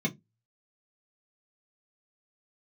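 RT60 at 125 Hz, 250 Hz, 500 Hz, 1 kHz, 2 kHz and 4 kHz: 0.30, 0.30, 0.20, 0.15, 0.15, 0.10 seconds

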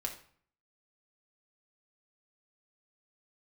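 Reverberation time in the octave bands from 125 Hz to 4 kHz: 0.65, 0.60, 0.50, 0.55, 0.50, 0.40 seconds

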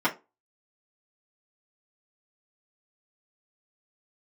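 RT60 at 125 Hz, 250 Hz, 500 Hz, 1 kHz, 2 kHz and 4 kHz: 0.25, 0.30, 0.25, 0.25, 0.20, 0.15 seconds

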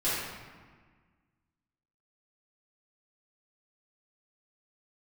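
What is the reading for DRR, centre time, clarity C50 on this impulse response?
−12.5 dB, 101 ms, −2.0 dB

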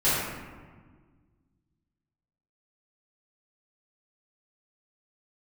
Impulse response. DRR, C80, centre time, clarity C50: −13.5 dB, 1.0 dB, 99 ms, −2.0 dB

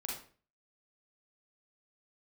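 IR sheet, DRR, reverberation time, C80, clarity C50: −2.5 dB, 0.40 s, 8.5 dB, 2.0 dB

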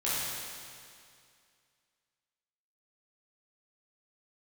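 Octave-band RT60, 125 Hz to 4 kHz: 2.3, 2.3, 2.3, 2.3, 2.3, 2.2 seconds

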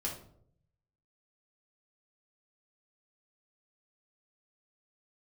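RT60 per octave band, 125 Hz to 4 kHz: 1.2, 0.80, 0.75, 0.55, 0.40, 0.35 seconds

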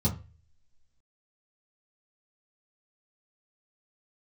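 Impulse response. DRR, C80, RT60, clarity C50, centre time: −8.0 dB, 18.0 dB, 0.30 s, 12.5 dB, 16 ms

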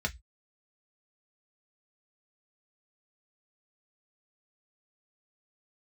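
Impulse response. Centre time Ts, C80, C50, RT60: 6 ms, 34.5 dB, 23.0 dB, 0.10 s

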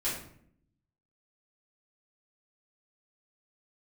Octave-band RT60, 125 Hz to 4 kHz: 1.1, 1.0, 0.70, 0.55, 0.55, 0.40 seconds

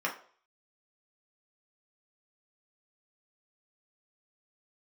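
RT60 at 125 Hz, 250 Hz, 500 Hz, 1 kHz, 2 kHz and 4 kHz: 0.35, 0.40, 0.50, 0.50, 0.40, 0.45 seconds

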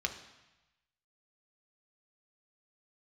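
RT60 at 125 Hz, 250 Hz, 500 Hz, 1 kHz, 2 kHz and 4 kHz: 1.3, 1.0, 0.95, 1.1, 1.1, 1.1 seconds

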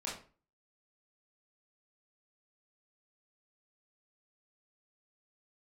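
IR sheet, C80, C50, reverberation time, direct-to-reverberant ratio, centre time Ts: 10.5 dB, 5.5 dB, 0.40 s, −6.5 dB, 37 ms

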